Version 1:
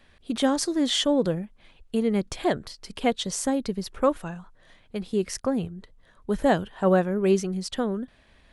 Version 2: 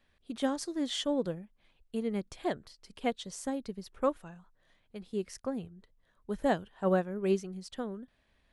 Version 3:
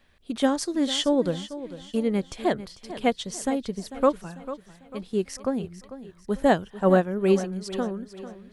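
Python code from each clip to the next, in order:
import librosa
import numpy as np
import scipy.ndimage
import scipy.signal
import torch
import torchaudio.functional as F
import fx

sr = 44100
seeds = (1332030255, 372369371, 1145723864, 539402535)

y1 = fx.upward_expand(x, sr, threshold_db=-30.0, expansion=1.5)
y1 = y1 * librosa.db_to_amplitude(-6.5)
y2 = fx.echo_feedback(y1, sr, ms=446, feedback_pct=43, wet_db=-14)
y2 = y2 * librosa.db_to_amplitude(8.5)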